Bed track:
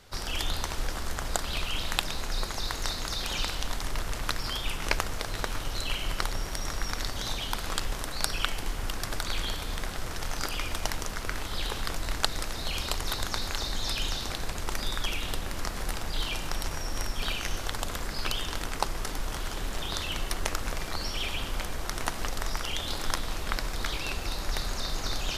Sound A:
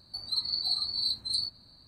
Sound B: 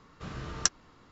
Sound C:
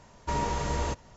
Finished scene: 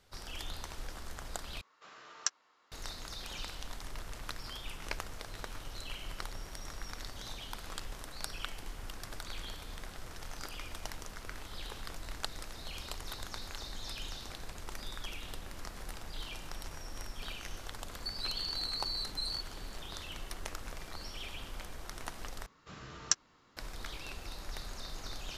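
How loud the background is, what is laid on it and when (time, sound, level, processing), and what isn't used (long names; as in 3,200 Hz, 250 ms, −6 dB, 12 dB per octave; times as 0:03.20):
bed track −11.5 dB
0:01.61: overwrite with B −7 dB + high-pass filter 680 Hz
0:17.92: mix in A −1 dB + brickwall limiter −29 dBFS
0:22.46: overwrite with B −6.5 dB + spectral tilt +1.5 dB per octave
not used: C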